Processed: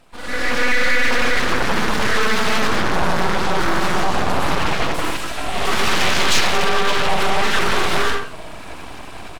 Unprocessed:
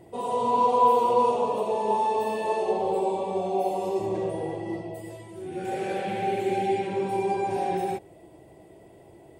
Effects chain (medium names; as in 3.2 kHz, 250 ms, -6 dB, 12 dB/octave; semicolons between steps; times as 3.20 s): 6.44–6.95 s: octave divider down 1 oct, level 0 dB; speakerphone echo 90 ms, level -6 dB; level rider gain up to 14.5 dB; reverberation RT60 0.50 s, pre-delay 92 ms, DRR -2 dB; 6.31–6.54 s: painted sound fall 750–4100 Hz -21 dBFS; peak limiter -7 dBFS, peak gain reduction 12 dB; frequency weighting D; full-wave rectifier; loudspeaker Doppler distortion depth 0.72 ms